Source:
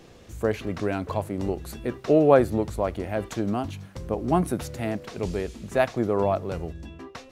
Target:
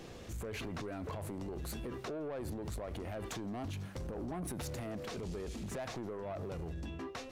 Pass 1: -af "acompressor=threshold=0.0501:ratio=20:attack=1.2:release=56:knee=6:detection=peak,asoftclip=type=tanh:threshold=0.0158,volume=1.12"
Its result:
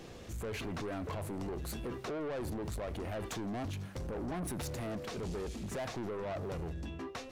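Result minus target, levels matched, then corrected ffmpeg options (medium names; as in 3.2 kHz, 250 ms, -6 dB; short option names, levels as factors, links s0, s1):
compression: peak gain reduction -6.5 dB
-af "acompressor=threshold=0.0224:ratio=20:attack=1.2:release=56:knee=6:detection=peak,asoftclip=type=tanh:threshold=0.0158,volume=1.12"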